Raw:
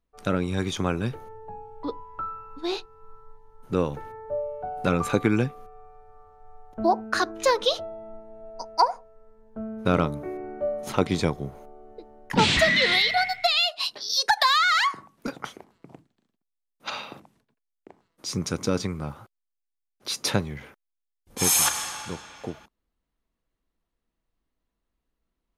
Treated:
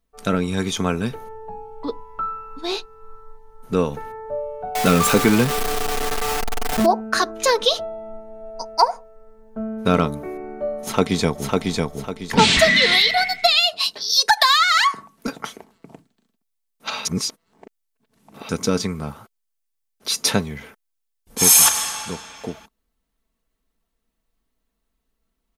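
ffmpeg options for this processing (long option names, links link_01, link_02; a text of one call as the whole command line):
ffmpeg -i in.wav -filter_complex "[0:a]asettb=1/sr,asplit=3[link_01][link_02][link_03];[link_01]atrim=end=4.754[link_04];[link_02]atrim=start=4.75:end=6.86,asetpts=PTS-STARTPTS,afade=type=in:duration=0.004:curve=qsin,afade=type=out:start_time=2.106:duration=0.004:curve=qsin,aeval=exprs='val(0)+0.5*0.0794*sgn(val(0))':channel_layout=same[link_05];[link_03]atrim=start=6.856[link_06];[link_04][link_05]acrossfade=duration=0.004:curve1=hsin:curve2=qsin[link_07];[link_07][link_06]acrossfade=duration=0.004:curve1=qsin:curve2=hsin,asplit=2[link_08][link_09];[link_09]afade=type=in:start_time=10.8:duration=0.01,afade=type=out:start_time=11.56:duration=0.01,aecho=0:1:550|1100|1650|2200|2750:0.749894|0.262463|0.091862|0.0321517|0.0112531[link_10];[link_08][link_10]amix=inputs=2:normalize=0,asplit=3[link_11][link_12][link_13];[link_11]atrim=end=17.052[link_14];[link_12]atrim=start=17.048:end=18.492,asetpts=PTS-STARTPTS,areverse[link_15];[link_13]atrim=start=18.488[link_16];[link_14][link_15]acrossfade=duration=0.004:curve1=hsin:curve2=hsin[link_17];[link_17][link_16]acrossfade=duration=0.004:curve1=hsin:curve2=hsin,highshelf=frequency=5000:gain=6.5,aecho=1:1:4.5:0.39,volume=3.5dB" out.wav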